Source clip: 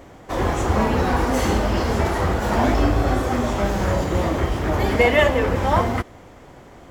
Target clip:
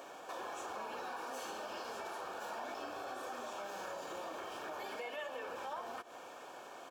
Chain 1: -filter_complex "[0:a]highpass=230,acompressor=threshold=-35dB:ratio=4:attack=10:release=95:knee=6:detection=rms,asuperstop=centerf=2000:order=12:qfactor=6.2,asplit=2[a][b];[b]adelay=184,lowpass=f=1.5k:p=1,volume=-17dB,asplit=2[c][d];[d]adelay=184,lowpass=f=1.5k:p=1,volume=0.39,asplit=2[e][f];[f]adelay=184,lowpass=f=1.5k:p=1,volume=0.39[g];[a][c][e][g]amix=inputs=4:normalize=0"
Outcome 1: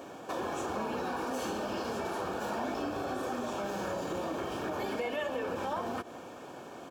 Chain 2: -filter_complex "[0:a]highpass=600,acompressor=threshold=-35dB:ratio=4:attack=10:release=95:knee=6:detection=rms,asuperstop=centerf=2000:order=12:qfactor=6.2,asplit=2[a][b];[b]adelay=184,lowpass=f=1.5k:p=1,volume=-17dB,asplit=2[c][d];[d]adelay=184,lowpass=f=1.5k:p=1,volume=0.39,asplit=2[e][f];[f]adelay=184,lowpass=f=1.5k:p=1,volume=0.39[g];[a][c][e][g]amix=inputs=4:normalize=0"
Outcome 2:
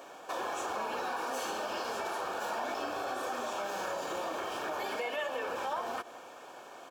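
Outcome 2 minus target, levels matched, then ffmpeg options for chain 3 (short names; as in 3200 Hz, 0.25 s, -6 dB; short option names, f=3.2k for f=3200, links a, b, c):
compressor: peak gain reduction -8 dB
-filter_complex "[0:a]highpass=600,acompressor=threshold=-45.5dB:ratio=4:attack=10:release=95:knee=6:detection=rms,asuperstop=centerf=2000:order=12:qfactor=6.2,asplit=2[a][b];[b]adelay=184,lowpass=f=1.5k:p=1,volume=-17dB,asplit=2[c][d];[d]adelay=184,lowpass=f=1.5k:p=1,volume=0.39,asplit=2[e][f];[f]adelay=184,lowpass=f=1.5k:p=1,volume=0.39[g];[a][c][e][g]amix=inputs=4:normalize=0"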